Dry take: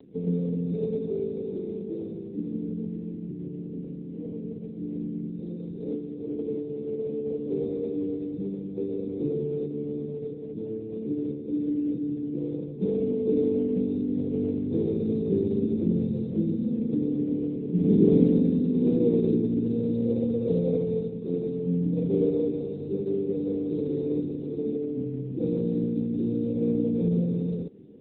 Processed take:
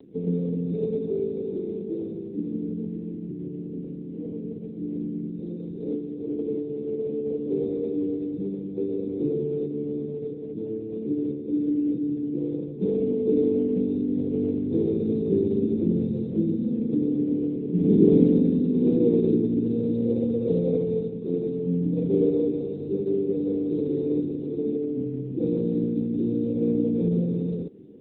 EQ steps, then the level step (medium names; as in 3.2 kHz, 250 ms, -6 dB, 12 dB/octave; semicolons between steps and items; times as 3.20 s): peaking EQ 340 Hz +4 dB 0.77 oct; 0.0 dB